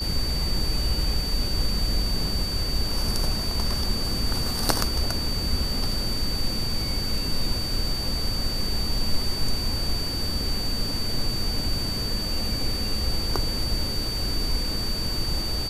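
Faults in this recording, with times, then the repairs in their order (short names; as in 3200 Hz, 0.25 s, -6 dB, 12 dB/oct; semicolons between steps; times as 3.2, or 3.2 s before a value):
tone 4600 Hz -29 dBFS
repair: notch 4600 Hz, Q 30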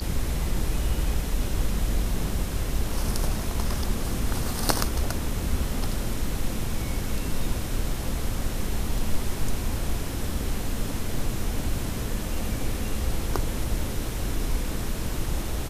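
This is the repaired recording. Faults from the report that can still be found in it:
none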